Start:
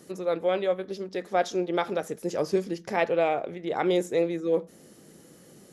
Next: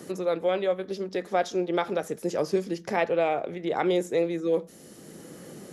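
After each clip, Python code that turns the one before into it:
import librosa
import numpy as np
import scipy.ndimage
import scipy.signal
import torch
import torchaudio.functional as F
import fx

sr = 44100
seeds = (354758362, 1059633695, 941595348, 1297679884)

y = fx.band_squash(x, sr, depth_pct=40)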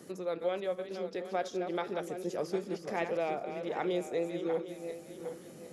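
y = fx.reverse_delay_fb(x, sr, ms=378, feedback_pct=55, wet_db=-8.0)
y = y * 10.0 ** (-8.5 / 20.0)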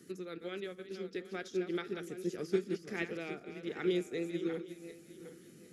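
y = fx.band_shelf(x, sr, hz=750.0, db=-15.0, octaves=1.3)
y = fx.upward_expand(y, sr, threshold_db=-47.0, expansion=1.5)
y = y * 10.0 ** (4.0 / 20.0)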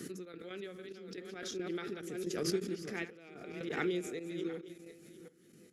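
y = fx.step_gate(x, sr, bpm=179, pattern='.xx.x.xxxxx..', floor_db=-12.0, edge_ms=4.5)
y = fx.pre_swell(y, sr, db_per_s=37.0)
y = y * 10.0 ** (-3.5 / 20.0)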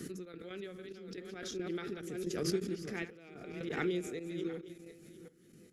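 y = fx.low_shelf(x, sr, hz=110.0, db=11.5)
y = y * 10.0 ** (-1.0 / 20.0)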